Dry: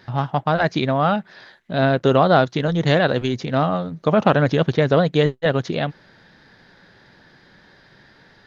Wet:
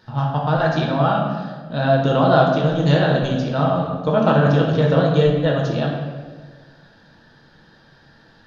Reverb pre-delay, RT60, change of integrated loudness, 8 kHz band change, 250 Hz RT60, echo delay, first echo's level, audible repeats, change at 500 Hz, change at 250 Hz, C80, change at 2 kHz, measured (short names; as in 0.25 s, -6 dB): 5 ms, 1.5 s, +1.0 dB, n/a, 1.8 s, none, none, none, +0.5 dB, +1.5 dB, 4.5 dB, -1.5 dB